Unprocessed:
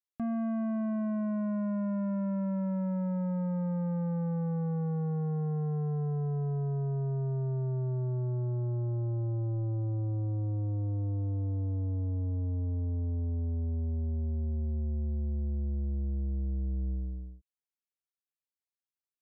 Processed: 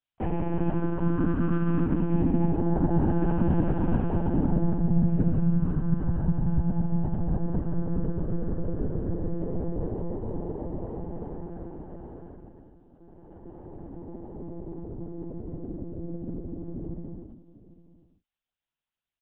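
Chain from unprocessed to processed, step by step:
comb filter 5.7 ms, depth 94%
in parallel at −7 dB: soft clipping −34 dBFS, distortion −11 dB
on the sum: cochlear-implant simulation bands 8
on a send: single-tap delay 800 ms −17 dB
on the sum: one-pitch LPC vocoder at 8 kHz 170 Hz
level +2 dB

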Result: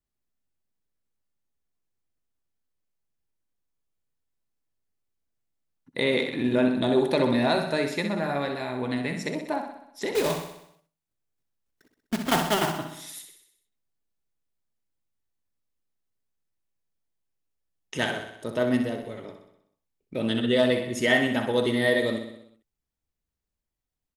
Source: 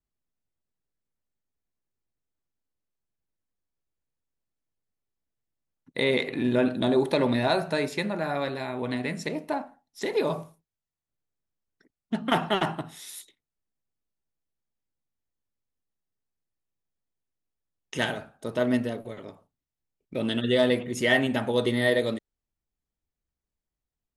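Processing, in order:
0:10.15–0:12.72: one scale factor per block 3 bits
on a send: repeating echo 63 ms, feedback 58%, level −8 dB

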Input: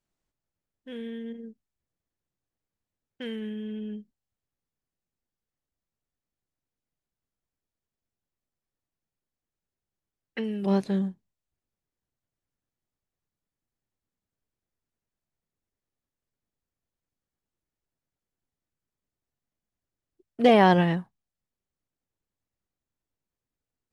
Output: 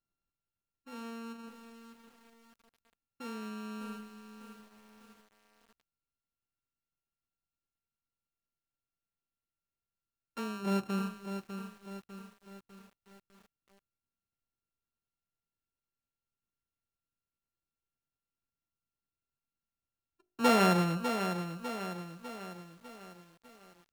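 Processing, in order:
samples sorted by size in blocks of 32 samples
high-shelf EQ 4,800 Hz −8 dB
hum removal 51.55 Hz, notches 15
convolution reverb RT60 0.40 s, pre-delay 18 ms, DRR 22 dB
feedback echo at a low word length 600 ms, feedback 55%, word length 8 bits, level −8 dB
level −6.5 dB

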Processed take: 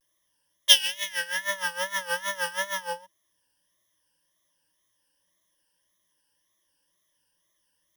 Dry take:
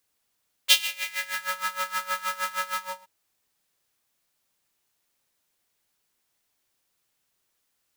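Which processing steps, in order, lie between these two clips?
EQ curve with evenly spaced ripples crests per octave 1.2, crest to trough 18 dB
tape wow and flutter 120 cents
level −2.5 dB

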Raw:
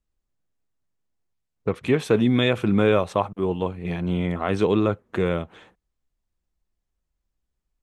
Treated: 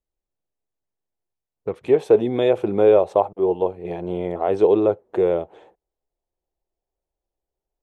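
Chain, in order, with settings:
flat-topped bell 550 Hz +8 dB, from 0:01.87 +15 dB
level −8.5 dB

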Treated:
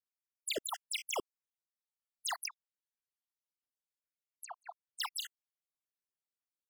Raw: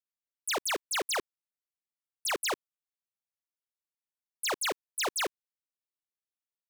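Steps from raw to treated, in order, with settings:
time-frequency cells dropped at random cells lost 61%
0:02.46–0:05.00: treble cut that deepens with the level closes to 590 Hz, closed at −32 dBFS
dynamic equaliser 1,500 Hz, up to −6 dB, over −50 dBFS, Q 2.1
level −2.5 dB

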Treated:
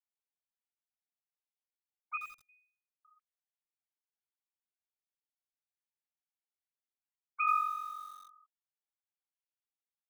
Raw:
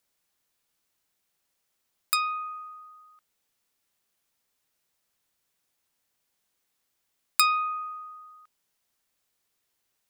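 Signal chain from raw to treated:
three sine waves on the formant tracks
0:02.17–0:03.05: Butterworth high-pass 2,000 Hz 96 dB per octave
feedback echo at a low word length 85 ms, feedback 35%, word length 8 bits, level −6 dB
level −5 dB

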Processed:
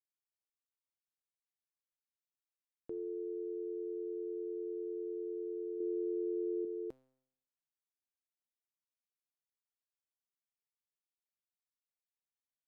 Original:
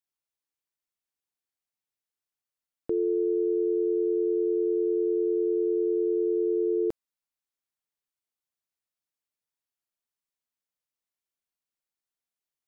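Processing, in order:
0:05.80–0:06.65: low shelf with overshoot 250 Hz −7 dB, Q 3
tuned comb filter 130 Hz, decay 0.75 s, harmonics all, mix 70%
level −5 dB

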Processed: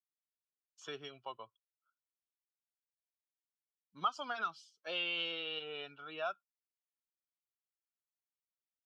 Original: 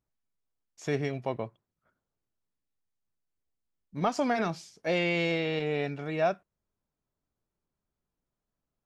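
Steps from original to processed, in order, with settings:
spectral dynamics exaggerated over time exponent 1.5
pair of resonant band-passes 2,000 Hz, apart 1.2 octaves
multiband upward and downward compressor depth 40%
level +8 dB

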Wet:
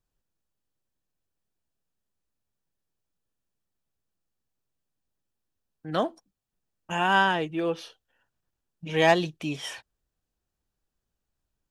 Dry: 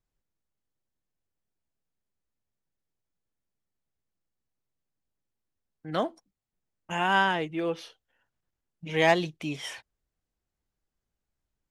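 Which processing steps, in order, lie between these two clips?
notch filter 2,100 Hz, Q 8.5
level +2 dB

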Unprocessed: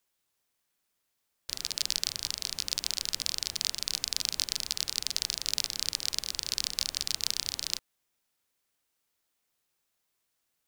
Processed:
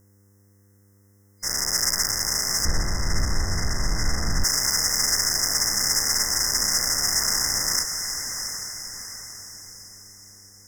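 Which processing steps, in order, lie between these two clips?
every bin's largest magnitude spread in time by 120 ms
feedback delay with all-pass diffusion 757 ms, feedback 46%, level −9.5 dB
soft clipping −16.5 dBFS, distortion −7 dB
dynamic equaliser 1,600 Hz, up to +5 dB, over −53 dBFS, Q 0.76
brick-wall band-stop 2,100–5,000 Hz
0:02.65–0:04.44: RIAA equalisation playback
hum with harmonics 100 Hz, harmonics 5, −67 dBFS −7 dB per octave
level +9 dB

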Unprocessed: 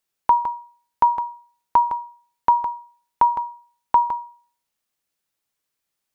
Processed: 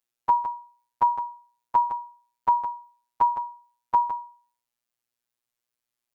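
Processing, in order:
phases set to zero 120 Hz
level −4 dB

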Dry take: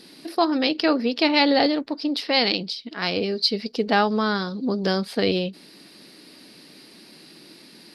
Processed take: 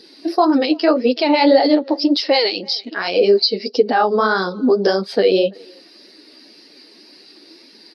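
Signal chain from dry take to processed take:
high-shelf EQ 4,000 Hz −6 dB
far-end echo of a speakerphone 330 ms, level −24 dB
flanger 1.8 Hz, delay 4.2 ms, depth 8.6 ms, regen −22%
parametric band 5,900 Hz +7 dB 0.6 octaves
downward compressor 2 to 1, threshold −31 dBFS, peak gain reduction 7.5 dB
high-pass filter 370 Hz 12 dB per octave
boost into a limiter +23.5 dB
every bin expanded away from the loudest bin 1.5 to 1
level −1 dB

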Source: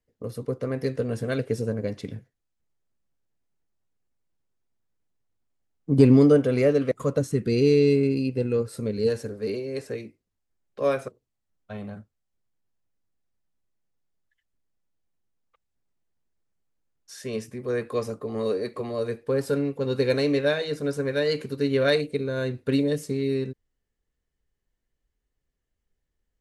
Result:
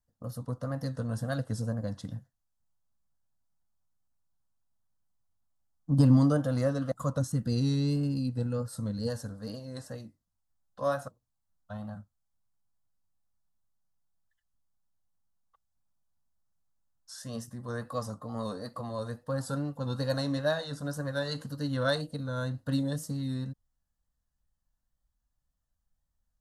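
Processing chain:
tape wow and flutter 69 cents
phaser with its sweep stopped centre 970 Hz, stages 4

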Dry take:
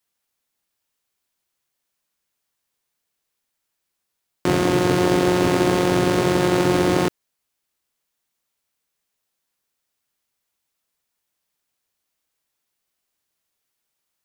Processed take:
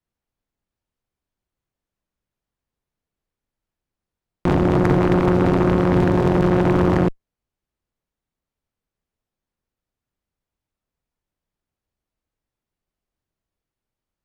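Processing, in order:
spectral tilt −4 dB per octave
harmonic generator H 4 −9 dB, 6 −9 dB, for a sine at 1 dBFS
level −5 dB

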